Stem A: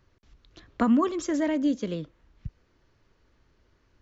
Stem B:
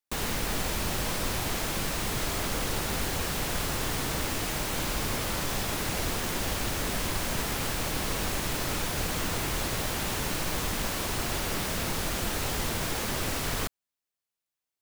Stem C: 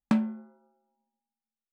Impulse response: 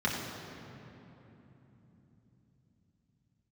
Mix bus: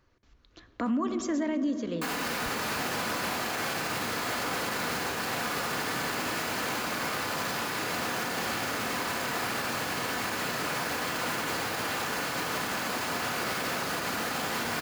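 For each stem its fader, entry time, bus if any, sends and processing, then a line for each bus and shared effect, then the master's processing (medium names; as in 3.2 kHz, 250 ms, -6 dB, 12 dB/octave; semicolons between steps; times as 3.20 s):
-0.5 dB, 0.00 s, send -20.5 dB, none
0.0 dB, 1.90 s, send -5 dB, high-pass 590 Hz 6 dB/octave
-8.0 dB, 0.75 s, no send, auto duck -14 dB, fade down 1.95 s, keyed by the first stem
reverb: on, RT60 3.4 s, pre-delay 3 ms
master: bass shelf 220 Hz -4.5 dB; peak limiter -22 dBFS, peak gain reduction 9 dB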